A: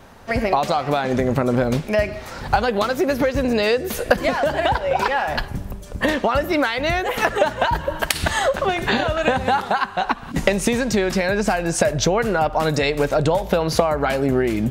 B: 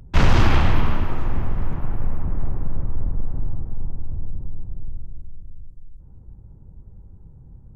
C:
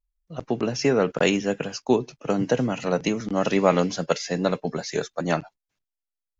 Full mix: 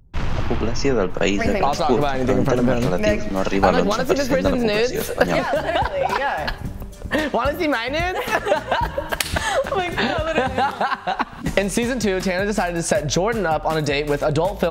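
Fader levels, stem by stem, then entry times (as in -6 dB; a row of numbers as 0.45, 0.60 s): -1.0, -8.5, +1.0 dB; 1.10, 0.00, 0.00 s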